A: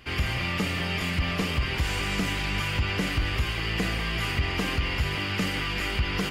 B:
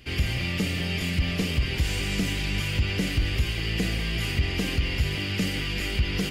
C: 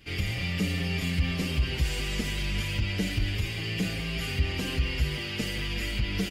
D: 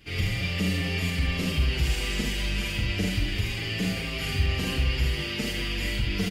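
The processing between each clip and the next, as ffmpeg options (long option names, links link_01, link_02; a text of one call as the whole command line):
ffmpeg -i in.wav -af "equalizer=frequency=1100:width=0.98:gain=-12.5,volume=2.5dB" out.wav
ffmpeg -i in.wav -filter_complex "[0:a]asplit=2[link_01][link_02];[link_02]adelay=6.7,afreqshift=-0.32[link_03];[link_01][link_03]amix=inputs=2:normalize=1" out.wav
ffmpeg -i in.wav -af "aecho=1:1:44|76:0.668|0.562" out.wav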